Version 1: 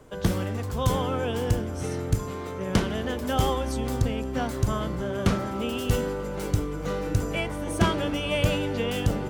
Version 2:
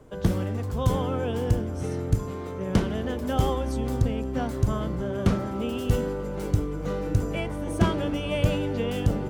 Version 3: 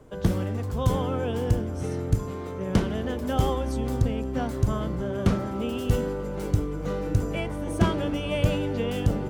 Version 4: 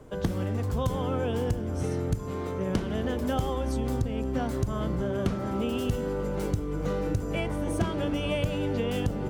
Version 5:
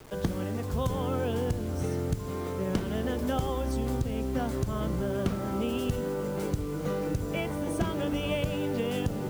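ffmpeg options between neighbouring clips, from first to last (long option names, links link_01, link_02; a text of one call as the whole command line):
ffmpeg -i in.wav -af "tiltshelf=frequency=830:gain=3.5,volume=-2dB" out.wav
ffmpeg -i in.wav -af anull out.wav
ffmpeg -i in.wav -af "acompressor=threshold=-26dB:ratio=6,volume=2dB" out.wav
ffmpeg -i in.wav -af "acrusher=bits=7:mix=0:aa=0.000001,bandreject=frequency=50:width_type=h:width=6,bandreject=frequency=100:width_type=h:width=6,volume=-1dB" out.wav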